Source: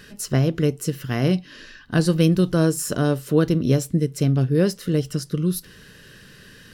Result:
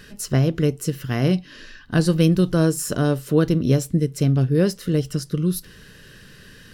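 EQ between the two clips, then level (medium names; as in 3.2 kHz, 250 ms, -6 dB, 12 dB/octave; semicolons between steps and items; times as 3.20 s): bass shelf 60 Hz +7 dB; 0.0 dB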